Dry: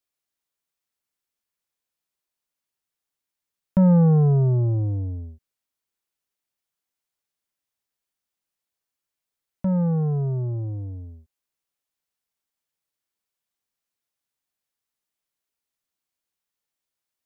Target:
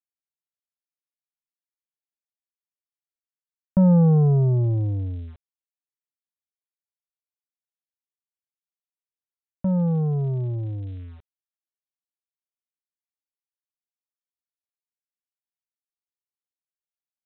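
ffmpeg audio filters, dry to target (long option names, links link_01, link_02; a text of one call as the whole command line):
ffmpeg -i in.wav -af "lowpass=1200,aresample=8000,aeval=exprs='val(0)*gte(abs(val(0)),0.00447)':channel_layout=same,aresample=44100" out.wav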